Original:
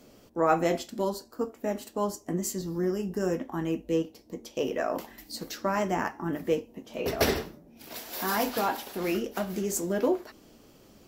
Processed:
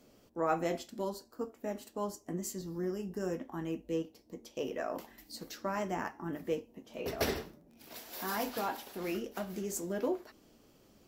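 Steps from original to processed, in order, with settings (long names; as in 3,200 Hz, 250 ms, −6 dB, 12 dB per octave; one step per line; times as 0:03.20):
0:06.96–0:09.34: surface crackle 50 per second −45 dBFS
level −7.5 dB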